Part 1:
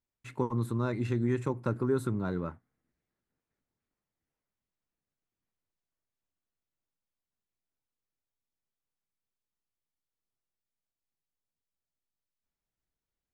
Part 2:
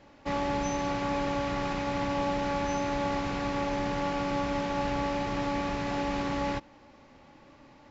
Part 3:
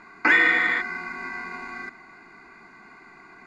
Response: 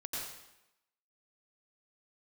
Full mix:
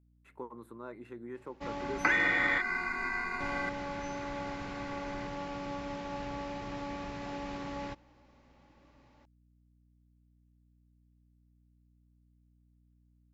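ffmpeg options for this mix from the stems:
-filter_complex "[0:a]highpass=380,equalizer=frequency=5800:width=0.65:gain=-15,volume=-8dB[link_01];[1:a]adelay=1350,volume=-9dB,asplit=3[link_02][link_03][link_04];[link_02]atrim=end=2.58,asetpts=PTS-STARTPTS,afade=type=out:start_time=2.576:duration=0.004:curve=hsin[link_05];[link_03]atrim=start=2.58:end=3.4,asetpts=PTS-STARTPTS,volume=0[link_06];[link_04]atrim=start=3.4,asetpts=PTS-STARTPTS,afade=type=in:duration=0.004:curve=hsin[link_07];[link_05][link_06][link_07]concat=n=3:v=0:a=1[link_08];[2:a]asubboost=boost=11.5:cutoff=73,acompressor=threshold=-25dB:ratio=5,adelay=1800,volume=-0.5dB[link_09];[link_01][link_08][link_09]amix=inputs=3:normalize=0,aeval=exprs='val(0)+0.000562*(sin(2*PI*60*n/s)+sin(2*PI*2*60*n/s)/2+sin(2*PI*3*60*n/s)/3+sin(2*PI*4*60*n/s)/4+sin(2*PI*5*60*n/s)/5)':channel_layout=same"

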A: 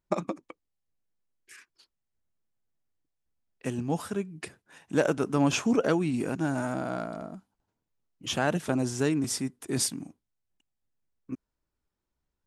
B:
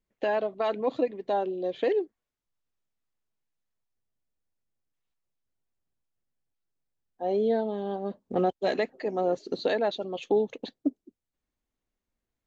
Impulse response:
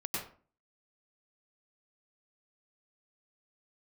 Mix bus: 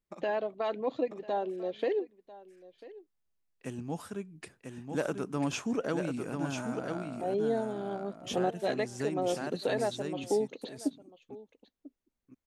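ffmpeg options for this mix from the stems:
-filter_complex "[0:a]volume=-7.5dB,afade=type=in:start_time=1.6:duration=0.2:silence=0.298538,afade=type=out:start_time=9.29:duration=0.48:silence=0.421697,asplit=2[link_01][link_02];[link_02]volume=-5dB[link_03];[1:a]volume=-4.5dB,asplit=3[link_04][link_05][link_06];[link_05]volume=-19dB[link_07];[link_06]apad=whole_len=549878[link_08];[link_01][link_08]sidechaincompress=threshold=-33dB:ratio=8:attack=42:release=327[link_09];[link_03][link_07]amix=inputs=2:normalize=0,aecho=0:1:994:1[link_10];[link_09][link_04][link_10]amix=inputs=3:normalize=0"

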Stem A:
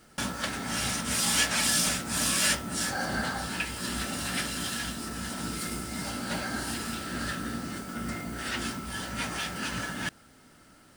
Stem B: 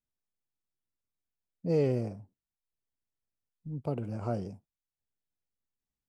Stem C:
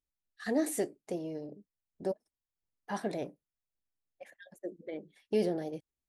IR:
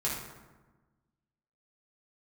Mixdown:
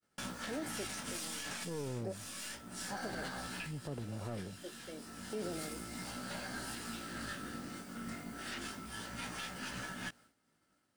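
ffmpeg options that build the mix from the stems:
-filter_complex "[0:a]highpass=frequency=99:poles=1,flanger=delay=15.5:depth=6.2:speed=0.31,aeval=exprs='0.178*(cos(1*acos(clip(val(0)/0.178,-1,1)))-cos(1*PI/2))+0.0631*(cos(4*acos(clip(val(0)/0.178,-1,1)))-cos(4*PI/2))+0.0398*(cos(6*acos(clip(val(0)/0.178,-1,1)))-cos(6*PI/2))+0.0126*(cos(8*acos(clip(val(0)/0.178,-1,1)))-cos(8*PI/2))':channel_layout=same,volume=-6dB[link_01];[1:a]acompressor=threshold=-31dB:ratio=2.5,aeval=exprs='clip(val(0),-1,0.02)':channel_layout=same,volume=-4.5dB,asplit=2[link_02][link_03];[2:a]volume=-8.5dB[link_04];[link_03]apad=whole_len=483703[link_05];[link_01][link_05]sidechaincompress=threshold=-48dB:ratio=10:attack=16:release=1150[link_06];[link_06][link_02][link_04]amix=inputs=3:normalize=0,agate=range=-33dB:threshold=-57dB:ratio=3:detection=peak,alimiter=level_in=6.5dB:limit=-24dB:level=0:latency=1:release=52,volume=-6.5dB"

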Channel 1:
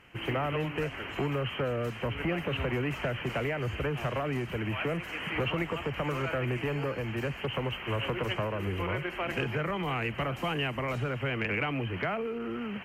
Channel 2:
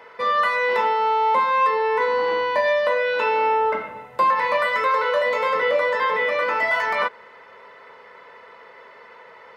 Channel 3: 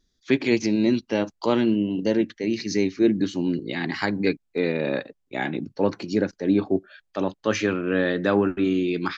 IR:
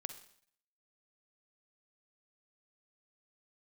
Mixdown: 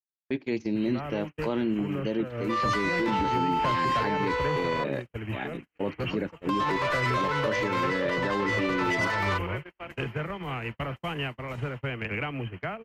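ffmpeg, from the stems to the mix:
-filter_complex "[0:a]lowshelf=frequency=150:gain=4.5,adelay=600,volume=-1dB[link_01];[1:a]highpass=550,asoftclip=type=tanh:threshold=-21dB,adelay=2300,volume=-2.5dB,asplit=3[link_02][link_03][link_04];[link_02]atrim=end=4.84,asetpts=PTS-STARTPTS,afade=type=out:start_time=4.836:duration=0.004:curve=hsin[link_05];[link_03]atrim=start=4.84:end=6.3,asetpts=PTS-STARTPTS,volume=0[link_06];[link_04]atrim=start=6.3,asetpts=PTS-STARTPTS,afade=type=in:duration=0.004:curve=hsin[link_07];[link_05][link_06][link_07]concat=n=3:v=0:a=1[link_08];[2:a]aemphasis=mode=reproduction:type=50fm,volume=-6.5dB,asplit=2[link_09][link_10];[link_10]apad=whole_len=592893[link_11];[link_01][link_11]sidechaincompress=threshold=-30dB:ratio=16:attack=5.3:release=196[link_12];[link_08][link_09]amix=inputs=2:normalize=0,alimiter=limit=-19dB:level=0:latency=1:release=19,volume=0dB[link_13];[link_12][link_13]amix=inputs=2:normalize=0,agate=range=-50dB:threshold=-31dB:ratio=16:detection=peak"

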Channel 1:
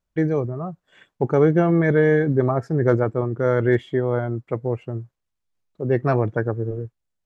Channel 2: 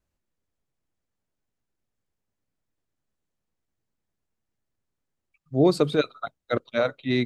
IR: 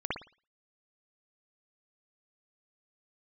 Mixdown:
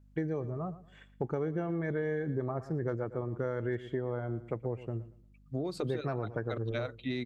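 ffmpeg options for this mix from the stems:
-filter_complex "[0:a]aeval=exprs='val(0)+0.00251*(sin(2*PI*50*n/s)+sin(2*PI*2*50*n/s)/2+sin(2*PI*3*50*n/s)/3+sin(2*PI*4*50*n/s)/4+sin(2*PI*5*50*n/s)/5)':channel_layout=same,volume=-6.5dB,asplit=2[link_01][link_02];[link_02]volume=-17.5dB[link_03];[1:a]acompressor=threshold=-25dB:ratio=6,volume=-3.5dB[link_04];[link_03]aecho=0:1:115|230|345|460:1|0.27|0.0729|0.0197[link_05];[link_01][link_04][link_05]amix=inputs=3:normalize=0,acompressor=threshold=-30dB:ratio=6"

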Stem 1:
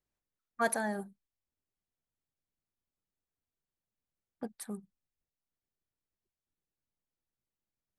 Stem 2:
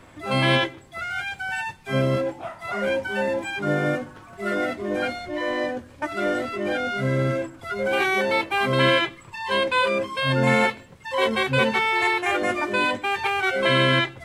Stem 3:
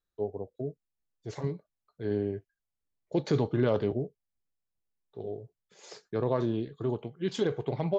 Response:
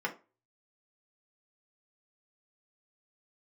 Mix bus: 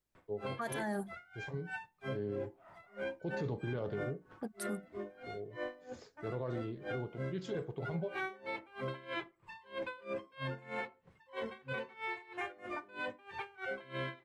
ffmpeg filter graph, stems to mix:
-filter_complex "[0:a]alimiter=level_in=2.5dB:limit=-24dB:level=0:latency=1:release=236,volume=-2.5dB,volume=1.5dB[link_01];[1:a]lowpass=frequency=2700:poles=1,aeval=exprs='val(0)*pow(10,-25*(0.5-0.5*cos(2*PI*3.1*n/s))/20)':channel_layout=same,adelay=150,volume=-13dB,asplit=2[link_02][link_03];[link_03]volume=-13dB[link_04];[2:a]lowshelf=frequency=250:gain=8,adelay=100,volume=-13.5dB,asplit=2[link_05][link_06];[link_06]volume=-11dB[link_07];[3:a]atrim=start_sample=2205[link_08];[link_04][link_07]amix=inputs=2:normalize=0[link_09];[link_09][link_08]afir=irnorm=-1:irlink=0[link_10];[link_01][link_02][link_05][link_10]amix=inputs=4:normalize=0,alimiter=level_in=5.5dB:limit=-24dB:level=0:latency=1:release=27,volume=-5.5dB"

